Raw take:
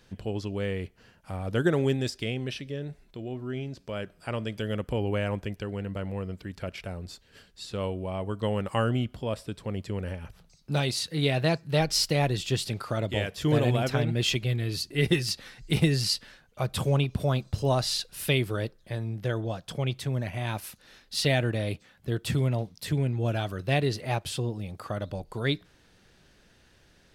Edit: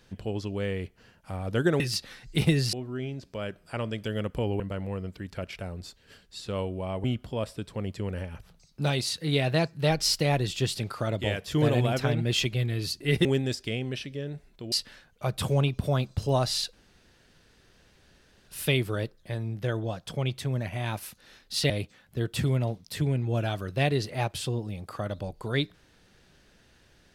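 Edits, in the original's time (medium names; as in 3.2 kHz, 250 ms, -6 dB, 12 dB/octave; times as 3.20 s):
1.80–3.27 s: swap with 15.15–16.08 s
5.14–5.85 s: delete
8.29–8.94 s: delete
18.09 s: insert room tone 1.75 s
21.31–21.61 s: delete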